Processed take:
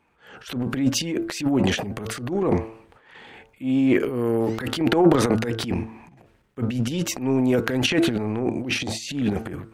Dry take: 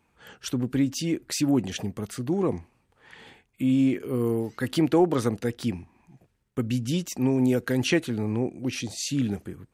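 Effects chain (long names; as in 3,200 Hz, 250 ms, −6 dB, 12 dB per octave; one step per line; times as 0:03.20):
bass and treble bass −6 dB, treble −10 dB
hum removal 111.7 Hz, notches 14
transient designer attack −10 dB, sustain +12 dB
level +5 dB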